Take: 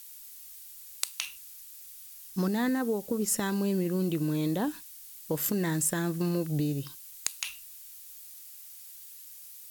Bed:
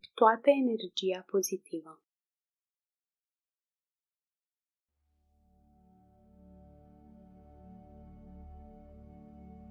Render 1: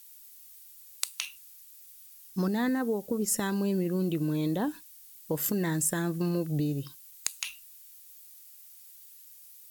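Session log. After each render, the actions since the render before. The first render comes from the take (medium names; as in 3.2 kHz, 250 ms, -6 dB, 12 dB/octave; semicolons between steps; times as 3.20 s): noise reduction 6 dB, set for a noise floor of -48 dBFS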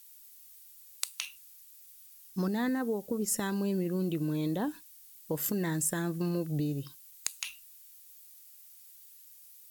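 trim -2.5 dB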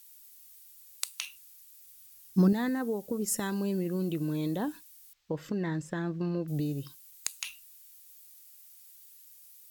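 1.87–2.53 s: peaking EQ 180 Hz +9.5 dB 2.8 oct; 5.13–6.48 s: distance through air 190 m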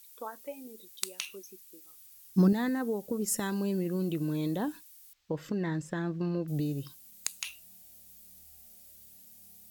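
add bed -18 dB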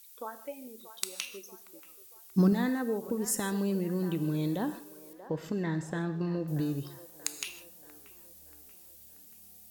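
feedback echo behind a band-pass 633 ms, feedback 49%, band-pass 900 Hz, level -12.5 dB; gated-style reverb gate 180 ms flat, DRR 11 dB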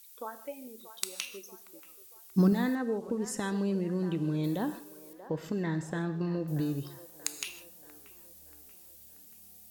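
2.75–4.44 s: distance through air 66 m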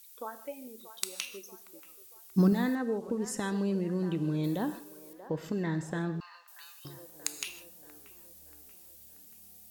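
6.20–6.85 s: steep high-pass 980 Hz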